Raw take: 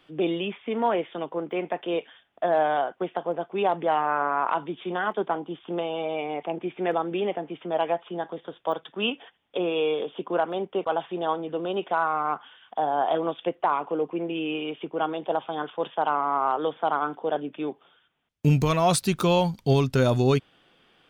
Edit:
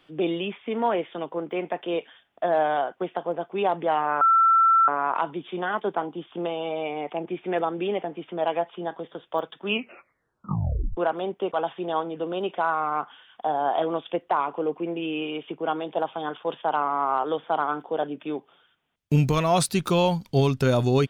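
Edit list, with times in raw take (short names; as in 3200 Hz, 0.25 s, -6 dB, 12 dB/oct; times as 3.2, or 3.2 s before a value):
4.21 add tone 1340 Hz -14.5 dBFS 0.67 s
8.99 tape stop 1.31 s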